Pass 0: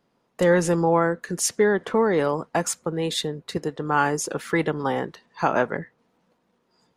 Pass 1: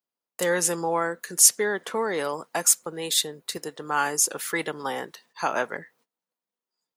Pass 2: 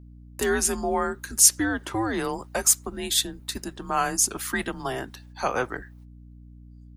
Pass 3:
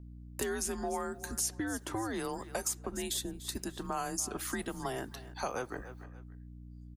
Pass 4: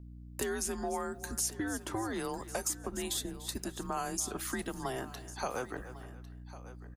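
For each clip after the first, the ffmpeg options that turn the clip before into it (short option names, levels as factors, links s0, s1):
-af "agate=range=0.0891:threshold=0.00158:ratio=16:detection=peak,aemphasis=mode=production:type=riaa,volume=0.668"
-af "afreqshift=-120,aeval=exprs='val(0)+0.00562*(sin(2*PI*60*n/s)+sin(2*PI*2*60*n/s)/2+sin(2*PI*3*60*n/s)/3+sin(2*PI*4*60*n/s)/4+sin(2*PI*5*60*n/s)/5)':c=same"
-filter_complex "[0:a]aecho=1:1:290|580:0.0891|0.0241,acrossover=split=1000|5000[s0][s1][s2];[s0]acompressor=threshold=0.0224:ratio=4[s3];[s1]acompressor=threshold=0.00708:ratio=4[s4];[s2]acompressor=threshold=0.0178:ratio=4[s5];[s3][s4][s5]amix=inputs=3:normalize=0,volume=0.794"
-af "aecho=1:1:1101:0.15"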